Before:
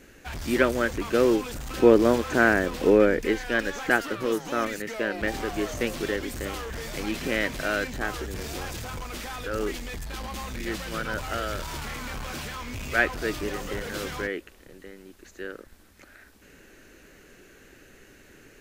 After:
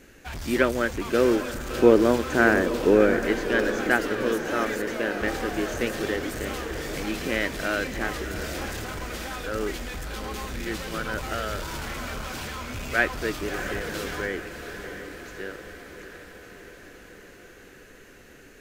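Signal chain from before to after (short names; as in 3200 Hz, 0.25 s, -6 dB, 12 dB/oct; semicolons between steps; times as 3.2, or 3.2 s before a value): diffused feedback echo 0.675 s, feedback 66%, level -9.5 dB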